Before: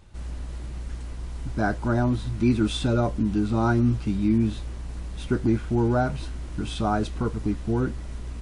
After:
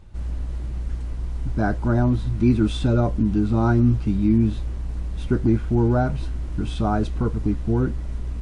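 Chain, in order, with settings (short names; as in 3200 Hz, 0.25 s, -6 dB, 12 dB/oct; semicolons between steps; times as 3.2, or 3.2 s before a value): tilt -1.5 dB/oct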